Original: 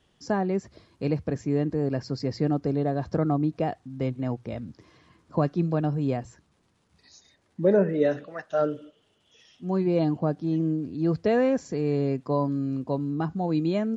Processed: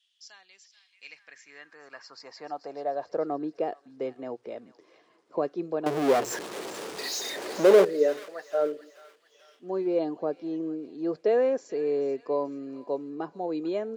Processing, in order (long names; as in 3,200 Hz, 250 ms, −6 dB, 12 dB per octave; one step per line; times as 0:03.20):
downsampling to 22,050 Hz
0:05.86–0:07.85: power curve on the samples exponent 0.35
on a send: delay with a high-pass on its return 436 ms, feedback 45%, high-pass 1,500 Hz, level −13 dB
on the sum: high-pass filter sweep 3,300 Hz → 420 Hz, 0:00.66–0:03.39
level −6 dB